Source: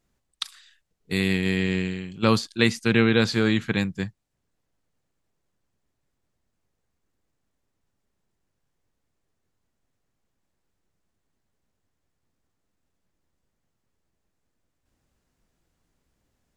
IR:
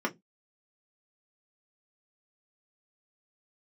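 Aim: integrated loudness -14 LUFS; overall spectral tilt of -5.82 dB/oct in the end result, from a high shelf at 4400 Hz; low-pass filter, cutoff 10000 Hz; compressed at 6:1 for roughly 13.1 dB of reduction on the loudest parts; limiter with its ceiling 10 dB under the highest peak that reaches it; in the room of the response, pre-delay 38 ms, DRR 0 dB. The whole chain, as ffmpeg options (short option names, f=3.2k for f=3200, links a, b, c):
-filter_complex "[0:a]lowpass=10k,highshelf=f=4.4k:g=-5.5,acompressor=threshold=-29dB:ratio=6,alimiter=limit=-22dB:level=0:latency=1,asplit=2[a][b];[1:a]atrim=start_sample=2205,adelay=38[c];[b][c]afir=irnorm=-1:irlink=0,volume=-8dB[d];[a][d]amix=inputs=2:normalize=0,volume=16dB"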